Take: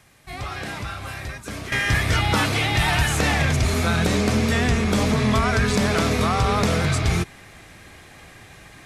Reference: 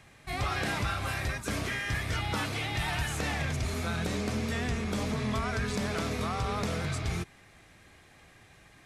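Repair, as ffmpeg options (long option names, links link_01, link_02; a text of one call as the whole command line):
ffmpeg -i in.wav -af "agate=range=-21dB:threshold=-37dB,asetnsamples=nb_out_samples=441:pad=0,asendcmd='1.72 volume volume -11.5dB',volume=0dB" out.wav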